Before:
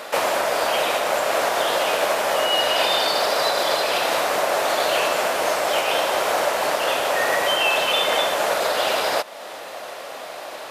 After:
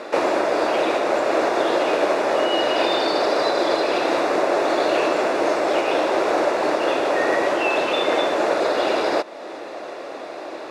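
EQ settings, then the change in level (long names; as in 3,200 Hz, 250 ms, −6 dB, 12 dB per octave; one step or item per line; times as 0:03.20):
high-frequency loss of the air 89 metres
parametric band 330 Hz +15 dB 0.88 octaves
notch filter 3,100 Hz, Q 8.3
−1.5 dB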